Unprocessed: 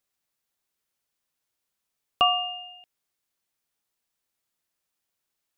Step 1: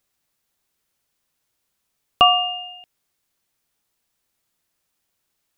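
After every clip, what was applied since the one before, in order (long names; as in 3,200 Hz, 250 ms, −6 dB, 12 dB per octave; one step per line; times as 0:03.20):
low-shelf EQ 230 Hz +4.5 dB
level +7 dB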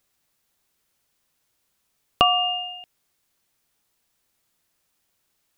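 downward compressor 2.5 to 1, threshold −20 dBFS, peak gain reduction 8 dB
level +2.5 dB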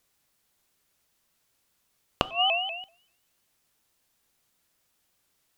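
gate with flip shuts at −10 dBFS, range −26 dB
coupled-rooms reverb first 0.58 s, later 1.5 s, from −25 dB, DRR 15.5 dB
pitch modulation by a square or saw wave saw up 5.2 Hz, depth 160 cents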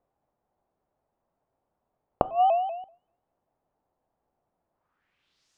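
low-pass filter sweep 750 Hz → 6,300 Hz, 0:04.72–0:05.51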